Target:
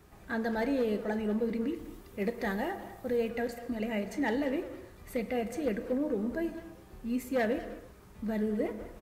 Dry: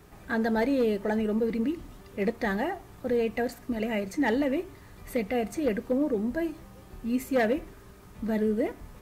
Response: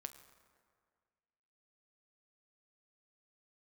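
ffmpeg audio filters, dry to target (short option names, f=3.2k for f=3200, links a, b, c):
-filter_complex "[0:a]asettb=1/sr,asplit=3[a][b][c];[a]atrim=end=1.754[d];[b]atrim=start=1.75:end=3.3,asetpts=PTS-STARTPTS,afade=t=in:d=0.004:c=qsin,afade=t=out:st=1.546:d=0.004:c=qsin,highshelf=f=10k:g=8.5[e];[c]atrim=start=3.296[f];[d][e]acrossfade=d=0.004:c1=hsin:c2=qsin[g];[g][f]acrossfade=d=0.004:c1=qsin:c2=hsin,asplit=2[h][i];[i]adelay=200,highpass=300,lowpass=3.4k,asoftclip=type=hard:threshold=-28dB,volume=-12dB[j];[h][j]amix=inputs=2:normalize=0[k];[1:a]atrim=start_sample=2205,afade=t=out:st=0.4:d=0.01,atrim=end_sample=18081[l];[k][l]afir=irnorm=-1:irlink=0"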